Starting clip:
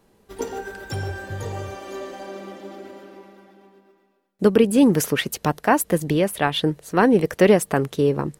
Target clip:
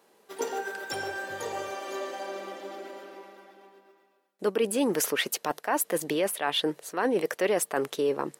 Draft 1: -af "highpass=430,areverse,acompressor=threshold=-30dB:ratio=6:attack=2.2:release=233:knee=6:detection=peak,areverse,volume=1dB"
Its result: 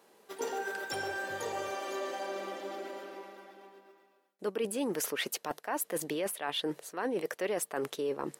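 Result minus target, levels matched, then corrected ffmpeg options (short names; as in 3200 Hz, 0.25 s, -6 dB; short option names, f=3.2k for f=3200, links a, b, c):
compressor: peak gain reduction +7.5 dB
-af "highpass=430,areverse,acompressor=threshold=-21dB:ratio=6:attack=2.2:release=233:knee=6:detection=peak,areverse,volume=1dB"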